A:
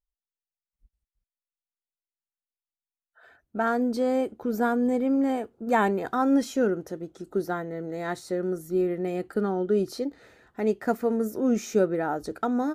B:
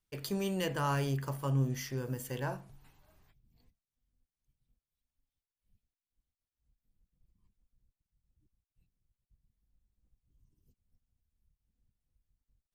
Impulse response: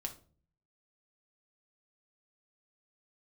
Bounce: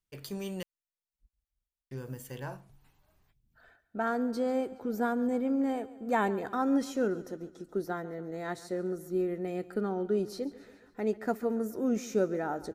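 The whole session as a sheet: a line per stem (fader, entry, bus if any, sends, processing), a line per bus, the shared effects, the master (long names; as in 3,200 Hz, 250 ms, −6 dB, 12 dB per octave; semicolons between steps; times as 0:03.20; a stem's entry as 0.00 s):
−5.5 dB, 0.40 s, no send, echo send −18 dB, no processing
−3.5 dB, 0.00 s, muted 0:00.63–0:01.91, no send, no echo send, no processing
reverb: not used
echo: repeating echo 140 ms, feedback 54%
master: no processing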